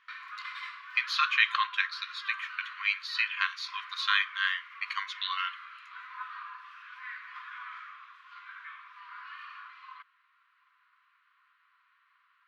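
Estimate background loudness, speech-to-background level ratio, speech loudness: -43.5 LUFS, 13.5 dB, -30.0 LUFS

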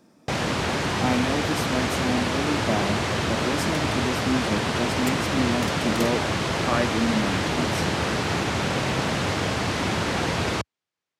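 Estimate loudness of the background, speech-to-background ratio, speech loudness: -25.0 LUFS, -4.0 dB, -29.0 LUFS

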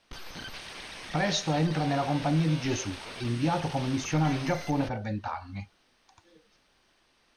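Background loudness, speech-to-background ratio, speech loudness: -40.5 LUFS, 11.0 dB, -29.5 LUFS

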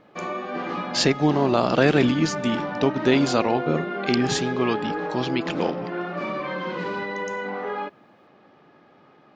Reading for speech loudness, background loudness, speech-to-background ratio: -23.0 LUFS, -30.0 LUFS, 7.0 dB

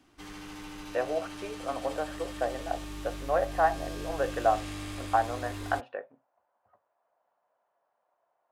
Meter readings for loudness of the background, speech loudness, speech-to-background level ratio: -40.5 LUFS, -32.0 LUFS, 8.5 dB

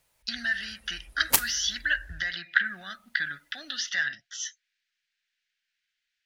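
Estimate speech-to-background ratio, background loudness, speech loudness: -5.0 dB, -24.5 LUFS, -29.5 LUFS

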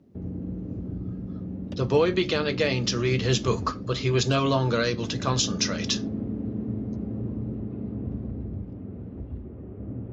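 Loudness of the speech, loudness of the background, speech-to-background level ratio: -25.5 LUFS, -34.0 LUFS, 8.5 dB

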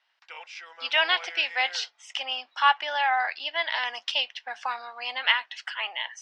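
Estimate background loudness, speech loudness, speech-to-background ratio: -41.0 LUFS, -26.5 LUFS, 14.5 dB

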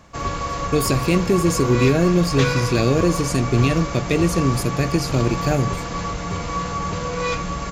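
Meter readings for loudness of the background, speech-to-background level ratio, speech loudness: -26.0 LUFS, 6.0 dB, -20.0 LUFS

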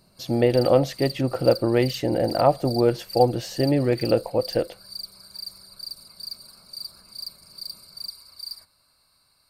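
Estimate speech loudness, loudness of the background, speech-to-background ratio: -22.5 LUFS, -36.5 LUFS, 14.0 dB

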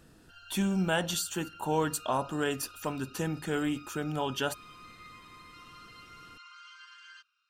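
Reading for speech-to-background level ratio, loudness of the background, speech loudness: 19.0 dB, -51.0 LUFS, -32.0 LUFS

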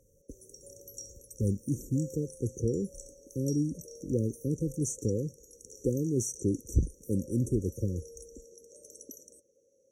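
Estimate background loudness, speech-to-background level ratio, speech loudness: -49.0 LUFS, 16.5 dB, -32.5 LUFS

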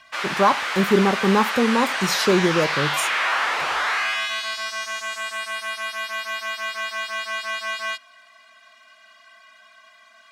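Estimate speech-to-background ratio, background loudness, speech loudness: 3.5 dB, -24.5 LUFS, -21.0 LUFS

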